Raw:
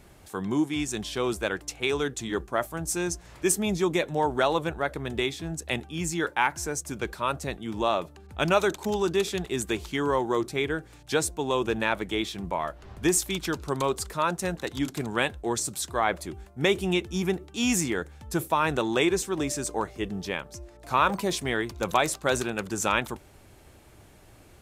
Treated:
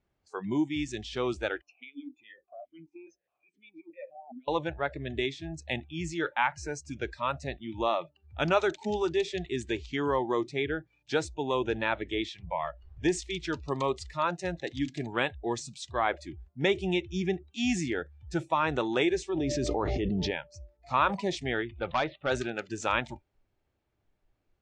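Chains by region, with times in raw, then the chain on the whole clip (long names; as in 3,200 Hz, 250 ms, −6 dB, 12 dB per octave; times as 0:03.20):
0:01.61–0:04.48: compressor whose output falls as the input rises −31 dBFS + formant filter that steps through the vowels 4.8 Hz
0:19.29–0:20.31: low-pass filter 4,400 Hz + dynamic equaliser 1,800 Hz, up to −7 dB, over −45 dBFS, Q 0.75 + envelope flattener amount 100%
0:21.61–0:22.31: Chebyshev low-pass filter 3,500 Hz, order 4 + hard clipping −18.5 dBFS
whole clip: Bessel low-pass filter 4,400 Hz, order 8; noise reduction from a noise print of the clip's start 23 dB; level −2.5 dB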